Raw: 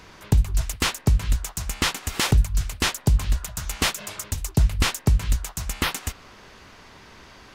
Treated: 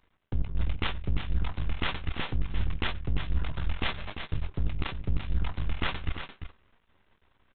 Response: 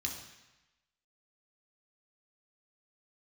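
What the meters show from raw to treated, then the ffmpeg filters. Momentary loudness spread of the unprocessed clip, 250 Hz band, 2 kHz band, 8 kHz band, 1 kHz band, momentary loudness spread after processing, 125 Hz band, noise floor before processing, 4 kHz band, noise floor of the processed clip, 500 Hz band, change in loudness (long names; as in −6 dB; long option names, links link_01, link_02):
9 LU, −8.5 dB, −7.5 dB, below −40 dB, −7.5 dB, 5 LU, −8.5 dB, −48 dBFS, −10.0 dB, −70 dBFS, −8.0 dB, −9.5 dB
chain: -filter_complex "[0:a]agate=range=-23dB:threshold=-34dB:ratio=16:detection=peak,lowshelf=frequency=80:gain=10,areverse,acompressor=threshold=-24dB:ratio=6,areverse,aeval=exprs='0.211*(cos(1*acos(clip(val(0)/0.211,-1,1)))-cos(1*PI/2))+0.0237*(cos(5*acos(clip(val(0)/0.211,-1,1)))-cos(5*PI/2))':channel_layout=same,aresample=8000,aeval=exprs='max(val(0),0)':channel_layout=same,aresample=44100,asplit=2[link_01][link_02];[link_02]adelay=13,volume=-14dB[link_03];[link_01][link_03]amix=inputs=2:normalize=0,aecho=1:1:345:0.355"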